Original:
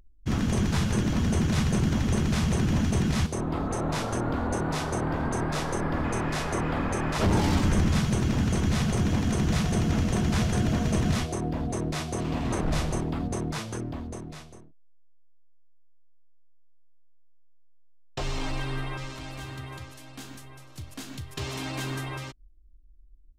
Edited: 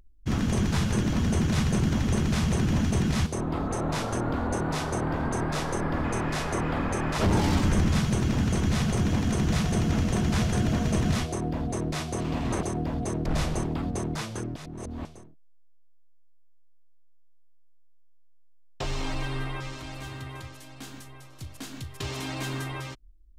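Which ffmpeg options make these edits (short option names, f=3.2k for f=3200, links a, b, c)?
-filter_complex "[0:a]asplit=5[a][b][c][d][e];[a]atrim=end=12.632[f];[b]atrim=start=11.298:end=11.932[g];[c]atrim=start=12.628:end=13.932[h];[d]atrim=start=13.928:end=14.422,asetpts=PTS-STARTPTS,areverse[i];[e]atrim=start=14.418[j];[f][g]acrossfade=d=0.004:c1=hsin:c2=hsin[k];[k][h]acrossfade=d=0.004:c1=hsin:c2=hsin[l];[l][i]acrossfade=d=0.004:c1=hsin:c2=hsin[m];[m][j]acrossfade=d=0.004:c1=hsin:c2=hsin"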